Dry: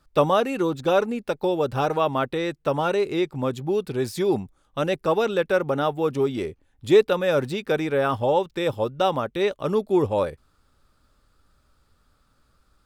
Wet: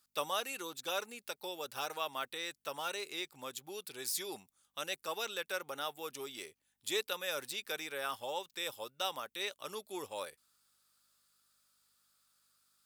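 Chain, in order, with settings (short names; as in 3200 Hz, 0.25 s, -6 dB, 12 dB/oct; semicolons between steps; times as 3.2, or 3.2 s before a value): hum 50 Hz, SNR 35 dB; differentiator; gain +2 dB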